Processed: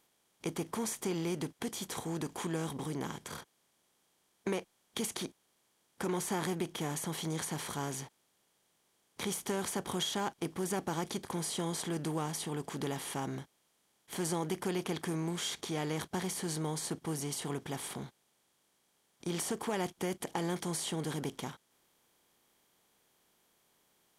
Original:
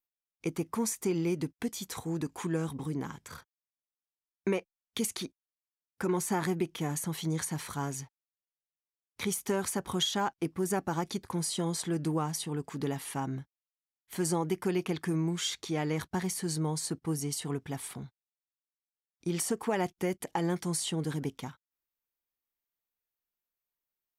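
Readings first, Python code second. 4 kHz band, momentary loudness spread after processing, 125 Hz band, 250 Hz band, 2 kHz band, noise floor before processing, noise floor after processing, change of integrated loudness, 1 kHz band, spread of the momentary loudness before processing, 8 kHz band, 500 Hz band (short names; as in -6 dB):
-2.0 dB, 8 LU, -4.5 dB, -4.5 dB, -2.0 dB, under -85 dBFS, -75 dBFS, -3.5 dB, -2.5 dB, 9 LU, -2.5 dB, -3.5 dB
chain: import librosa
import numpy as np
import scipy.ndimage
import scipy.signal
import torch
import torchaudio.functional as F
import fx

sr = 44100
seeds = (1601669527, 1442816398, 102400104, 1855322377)

y = fx.bin_compress(x, sr, power=0.6)
y = y * 10.0 ** (-7.0 / 20.0)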